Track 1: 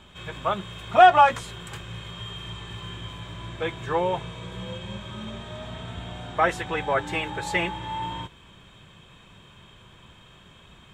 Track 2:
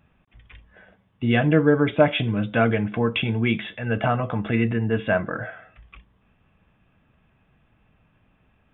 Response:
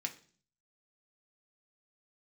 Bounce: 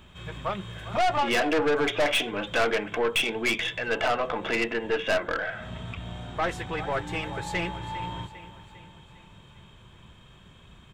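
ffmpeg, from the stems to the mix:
-filter_complex "[0:a]acontrast=38,volume=-8.5dB,asplit=2[link_01][link_02];[link_02]volume=-15dB[link_03];[1:a]highpass=frequency=360:width=0.5412,highpass=frequency=360:width=1.3066,highshelf=frequency=2300:gain=9,volume=2.5dB,asplit=2[link_04][link_05];[link_05]apad=whole_len=482346[link_06];[link_01][link_06]sidechaincompress=threshold=-37dB:ratio=8:attack=10:release=225[link_07];[link_03]aecho=0:1:401|802|1203|1604|2005|2406|2807:1|0.51|0.26|0.133|0.0677|0.0345|0.0176[link_08];[link_07][link_04][link_08]amix=inputs=3:normalize=0,lowshelf=frequency=220:gain=6.5,aeval=exprs='(tanh(10*val(0)+0.35)-tanh(0.35))/10':channel_layout=same"

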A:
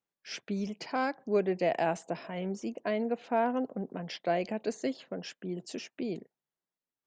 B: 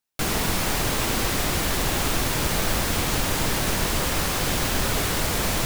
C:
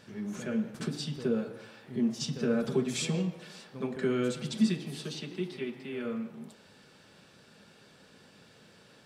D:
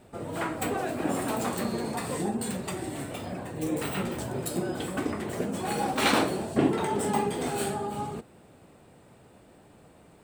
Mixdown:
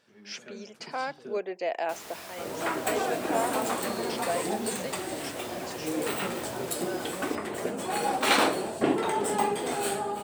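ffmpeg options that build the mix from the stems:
ffmpeg -i stem1.wav -i stem2.wav -i stem3.wav -i stem4.wav -filter_complex "[0:a]bass=frequency=250:gain=-13,treble=frequency=4000:gain=3,volume=-0.5dB[link_01];[1:a]highpass=91,adelay=1700,volume=-18.5dB[link_02];[2:a]volume=-9.5dB,asplit=3[link_03][link_04][link_05];[link_03]atrim=end=1.38,asetpts=PTS-STARTPTS,afade=type=out:start_time=1.376:duration=0.004:curve=hsin[link_06];[link_04]atrim=start=1.38:end=2.75,asetpts=PTS-STARTPTS,volume=0[link_07];[link_05]atrim=start=2.75,asetpts=PTS-STARTPTS,afade=type=in:duration=0.004:curve=hsin[link_08];[link_06][link_07][link_08]concat=n=3:v=0:a=1[link_09];[3:a]adelay=2250,volume=2dB[link_10];[link_01][link_02][link_09][link_10]amix=inputs=4:normalize=0,bass=frequency=250:gain=-12,treble=frequency=4000:gain=0" out.wav

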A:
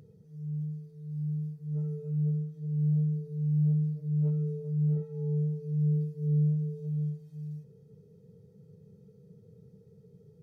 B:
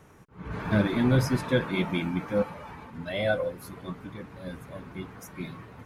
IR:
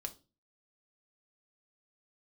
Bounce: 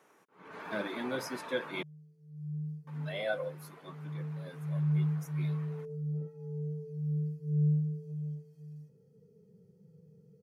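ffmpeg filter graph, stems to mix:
-filter_complex "[0:a]flanger=delay=3.5:depth=3.1:regen=49:speed=0.39:shape=triangular,bandreject=frequency=3700:width=5,adelay=1250,volume=0dB[link_01];[1:a]highpass=370,volume=-6.5dB,asplit=3[link_02][link_03][link_04];[link_02]atrim=end=1.83,asetpts=PTS-STARTPTS,afade=type=out:start_time=1.826:duration=0.004:curve=hsin[link_05];[link_03]atrim=start=1.83:end=2.87,asetpts=PTS-STARTPTS,volume=0[link_06];[link_04]atrim=start=2.87,asetpts=PTS-STARTPTS,afade=type=in:duration=0.004:curve=hsin[link_07];[link_05][link_06][link_07]concat=n=3:v=0:a=1,asplit=2[link_08][link_09];[link_09]apad=whole_len=514974[link_10];[link_01][link_10]sidechaincompress=threshold=-41dB:ratio=8:attack=21:release=1420[link_11];[link_11][link_08]amix=inputs=2:normalize=0,highpass=120"

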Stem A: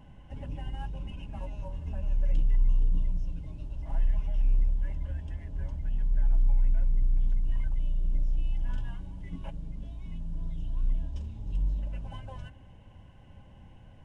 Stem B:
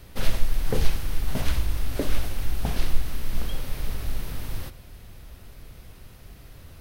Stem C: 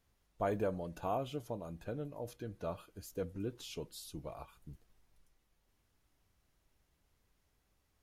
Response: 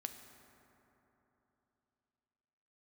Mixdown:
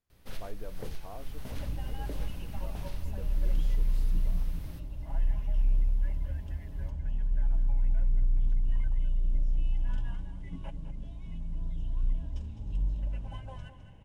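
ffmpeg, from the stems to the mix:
-filter_complex "[0:a]adelay=1200,volume=-1.5dB,asplit=2[link_01][link_02];[link_02]volume=-11dB[link_03];[1:a]alimiter=limit=-11.5dB:level=0:latency=1:release=296,adelay=100,volume=-14.5dB[link_04];[2:a]volume=-11dB[link_05];[link_03]aecho=0:1:208:1[link_06];[link_01][link_04][link_05][link_06]amix=inputs=4:normalize=0"

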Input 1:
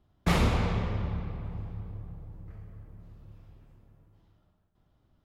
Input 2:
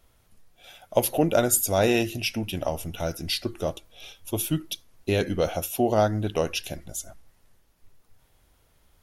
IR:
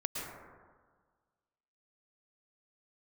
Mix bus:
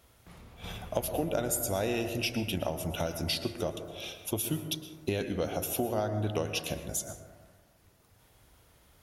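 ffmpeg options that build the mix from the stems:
-filter_complex "[0:a]alimiter=limit=-22dB:level=0:latency=1:release=122,volume=-11.5dB[link_01];[1:a]highpass=53,acompressor=threshold=-32dB:ratio=5,volume=0dB,asplit=3[link_02][link_03][link_04];[link_03]volume=-7dB[link_05];[link_04]apad=whole_len=231215[link_06];[link_01][link_06]sidechaingate=range=-10dB:threshold=-54dB:ratio=16:detection=peak[link_07];[2:a]atrim=start_sample=2205[link_08];[link_05][link_08]afir=irnorm=-1:irlink=0[link_09];[link_07][link_02][link_09]amix=inputs=3:normalize=0"

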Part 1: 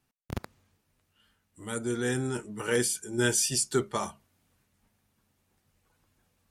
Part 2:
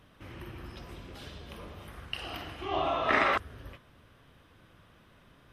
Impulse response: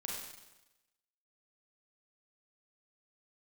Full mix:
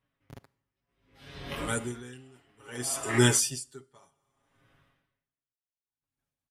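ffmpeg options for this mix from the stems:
-filter_complex "[0:a]agate=range=-33dB:threshold=-56dB:ratio=3:detection=peak,volume=-3dB,asplit=3[link_01][link_02][link_03];[link_02]volume=-16.5dB[link_04];[1:a]equalizer=frequency=2000:width_type=o:width=0.47:gain=5.5,dynaudnorm=framelen=310:gausssize=7:maxgain=13dB,flanger=delay=17:depth=6.2:speed=1.1,volume=-8.5dB,afade=type=in:start_time=0.75:duration=0.59:silence=0.251189,afade=type=out:start_time=2.47:duration=0.58:silence=0.237137[link_05];[link_03]apad=whole_len=243731[link_06];[link_05][link_06]sidechaincompress=threshold=-32dB:ratio=8:attack=16:release=164[link_07];[2:a]atrim=start_sample=2205[link_08];[link_04][link_08]afir=irnorm=-1:irlink=0[link_09];[link_01][link_07][link_09]amix=inputs=3:normalize=0,aecho=1:1:7.3:0.7,dynaudnorm=framelen=340:gausssize=3:maxgain=7.5dB,aeval=exprs='val(0)*pow(10,-33*(0.5-0.5*cos(2*PI*0.63*n/s))/20)':channel_layout=same"

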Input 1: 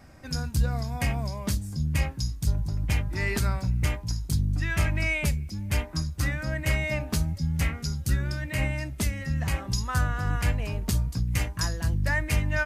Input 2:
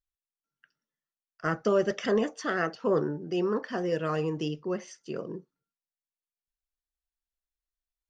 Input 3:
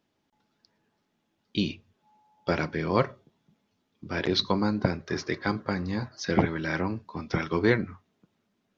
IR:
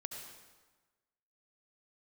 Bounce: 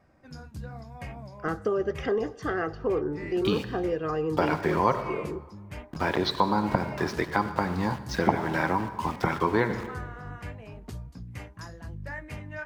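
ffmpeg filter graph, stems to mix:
-filter_complex "[0:a]highshelf=frequency=2000:gain=-9,flanger=delay=1.7:depth=8.9:regen=-54:speed=1:shape=sinusoidal,lowshelf=frequency=120:gain=-12,volume=-2.5dB[link_01];[1:a]highshelf=frequency=2700:gain=-10,aecho=1:1:2.5:0.48,acompressor=threshold=-26dB:ratio=3,volume=0.5dB,asplit=3[link_02][link_03][link_04];[link_03]volume=-13dB[link_05];[2:a]equalizer=frequency=920:width=1.8:gain=12.5,aeval=exprs='val(0)*gte(abs(val(0)),0.0126)':channel_layout=same,adelay=1900,volume=1dB,asplit=2[link_06][link_07];[link_07]volume=-7.5dB[link_08];[link_04]apad=whole_len=557932[link_09];[link_01][link_09]sidechaincompress=threshold=-28dB:ratio=8:attack=23:release=265[link_10];[link_10][link_06]amix=inputs=2:normalize=0,acompressor=threshold=-25dB:ratio=6,volume=0dB[link_11];[3:a]atrim=start_sample=2205[link_12];[link_05][link_08]amix=inputs=2:normalize=0[link_13];[link_13][link_12]afir=irnorm=-1:irlink=0[link_14];[link_02][link_11][link_14]amix=inputs=3:normalize=0,highshelf=frequency=5100:gain=-7.5"

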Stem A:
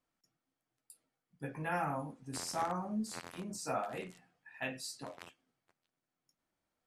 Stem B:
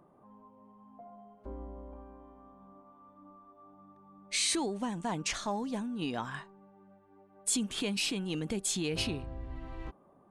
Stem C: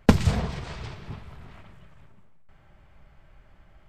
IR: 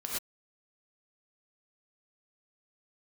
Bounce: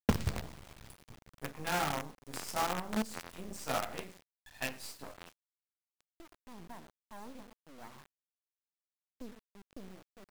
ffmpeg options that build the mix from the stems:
-filter_complex "[0:a]volume=1dB,asplit=2[link_01][link_02];[link_02]volume=-20dB[link_03];[1:a]lowpass=frequency=1200:width=0.5412,lowpass=frequency=1200:width=1.3066,tremolo=f=1.6:d=0.96,adelay=1650,volume=-9.5dB,asplit=2[link_04][link_05];[link_05]volume=-13.5dB[link_06];[2:a]volume=-13dB,asplit=2[link_07][link_08];[link_08]volume=-19dB[link_09];[3:a]atrim=start_sample=2205[link_10];[link_03][link_06][link_09]amix=inputs=3:normalize=0[link_11];[link_11][link_10]afir=irnorm=-1:irlink=0[link_12];[link_01][link_04][link_07][link_12]amix=inputs=4:normalize=0,acrusher=bits=6:dc=4:mix=0:aa=0.000001"

